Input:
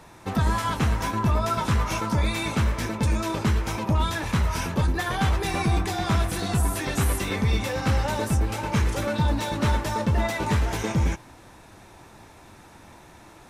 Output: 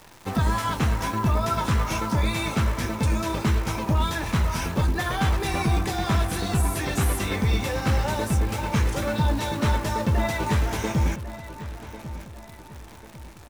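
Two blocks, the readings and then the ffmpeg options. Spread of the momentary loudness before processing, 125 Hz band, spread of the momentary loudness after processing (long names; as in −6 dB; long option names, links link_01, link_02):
2 LU, +0.5 dB, 13 LU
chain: -filter_complex "[0:a]acrusher=bits=8:dc=4:mix=0:aa=0.000001,asplit=2[link_01][link_02];[link_02]adelay=1096,lowpass=frequency=3400:poles=1,volume=-13.5dB,asplit=2[link_03][link_04];[link_04]adelay=1096,lowpass=frequency=3400:poles=1,volume=0.43,asplit=2[link_05][link_06];[link_06]adelay=1096,lowpass=frequency=3400:poles=1,volume=0.43,asplit=2[link_07][link_08];[link_08]adelay=1096,lowpass=frequency=3400:poles=1,volume=0.43[link_09];[link_01][link_03][link_05][link_07][link_09]amix=inputs=5:normalize=0"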